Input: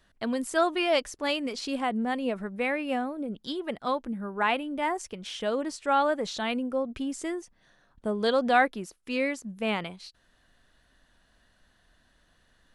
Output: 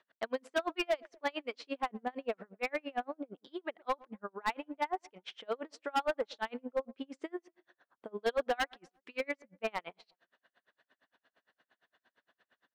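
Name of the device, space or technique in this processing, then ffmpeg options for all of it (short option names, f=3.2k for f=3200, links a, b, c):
helicopter radio: -filter_complex "[0:a]highpass=400,lowpass=2.8k,aeval=exprs='val(0)*pow(10,-37*(0.5-0.5*cos(2*PI*8.7*n/s))/20)':c=same,asoftclip=type=hard:threshold=-27dB,asettb=1/sr,asplit=3[a][b][c];[a]atrim=end=8.564[d];[b]atrim=start=8.56:end=9.2,asetpts=PTS-STARTPTS,afade=t=in:d=0.004:c=qsin,afade=t=out:st=0.636:d=0.004:c=qsin,equalizer=f=420:w=0.6:g=-5.5[e];[c]atrim=start=9.196[f];[d][e]acrossfade=d=0.004:c1=hsin:c2=qsin[g];[g][f]acrossfade=d=0.004:c1=qsin:c2=hsin,asplit=2[h][i];[i]adelay=118,lowpass=f=1.3k:p=1,volume=-23dB,asplit=2[j][k];[k]adelay=118,lowpass=f=1.3k:p=1,volume=0.47,asplit=2[l][m];[m]adelay=118,lowpass=f=1.3k:p=1,volume=0.47[n];[h][j][l][n]amix=inputs=4:normalize=0,volume=2dB"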